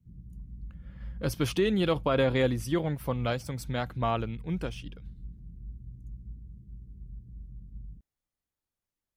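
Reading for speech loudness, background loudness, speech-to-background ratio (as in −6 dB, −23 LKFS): −29.5 LKFS, −46.5 LKFS, 17.0 dB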